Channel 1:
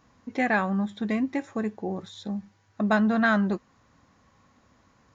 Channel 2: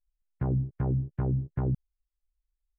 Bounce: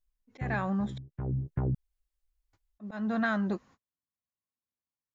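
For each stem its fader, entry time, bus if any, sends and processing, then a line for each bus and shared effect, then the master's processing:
−1.5 dB, 0.00 s, muted 0:00.98–0:02.53, no send, noise gate −50 dBFS, range −42 dB; volume swells 318 ms
+2.0 dB, 0.00 s, no send, automatic ducking −22 dB, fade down 1.30 s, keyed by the first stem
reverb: not used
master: downward compressor 3 to 1, threshold −27 dBFS, peak gain reduction 6 dB

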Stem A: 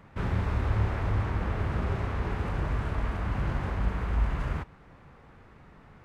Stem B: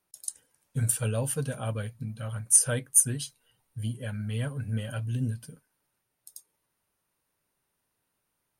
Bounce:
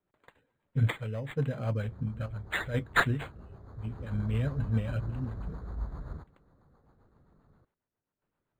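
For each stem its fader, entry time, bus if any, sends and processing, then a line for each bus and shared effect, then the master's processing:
0:03.59 −18 dB → 0:04.14 −8.5 dB, 1.60 s, no send, low-pass filter 1,500 Hz 24 dB per octave
+3.0 dB, 0.00 s, no send, low-pass that shuts in the quiet parts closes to 2,100 Hz, open at −22.5 dBFS; square-wave tremolo 0.73 Hz, depth 60%, duty 65%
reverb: not used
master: rotating-speaker cabinet horn 7.5 Hz; linearly interpolated sample-rate reduction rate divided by 8×

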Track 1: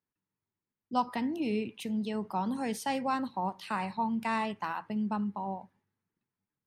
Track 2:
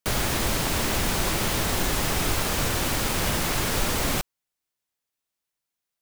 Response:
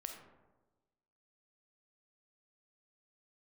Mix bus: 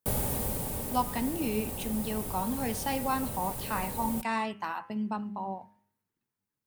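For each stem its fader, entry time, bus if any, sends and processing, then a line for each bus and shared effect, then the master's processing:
+0.5 dB, 0.00 s, no send, parametric band 170 Hz −7 dB 0.24 octaves; hum removal 102.4 Hz, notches 31
−1.5 dB, 0.00 s, no send, flat-topped bell 2,800 Hz −12 dB 2.9 octaves; notch comb filter 340 Hz; pitch vibrato 1.4 Hz 8.1 cents; automatic ducking −9 dB, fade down 1.10 s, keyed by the first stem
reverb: not used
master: high-shelf EQ 8,900 Hz +6 dB

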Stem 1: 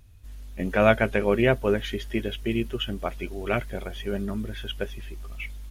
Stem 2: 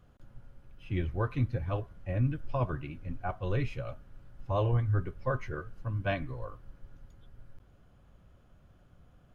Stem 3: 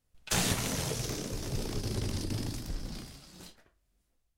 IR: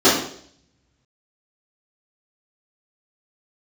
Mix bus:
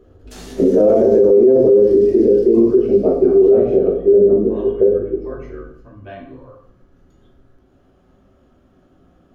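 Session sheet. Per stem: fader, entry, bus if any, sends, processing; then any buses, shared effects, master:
+1.0 dB, 0.00 s, send −17.5 dB, low-pass with resonance 460 Hz, resonance Q 4.9
0.0 dB, 0.00 s, send −17.5 dB, downward compressor 2 to 1, threshold −49 dBFS, peak gain reduction 14.5 dB
−14.5 dB, 0.00 s, send −20 dB, no processing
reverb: on, RT60 0.60 s, pre-delay 3 ms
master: brickwall limiter −4.5 dBFS, peak gain reduction 17.5 dB

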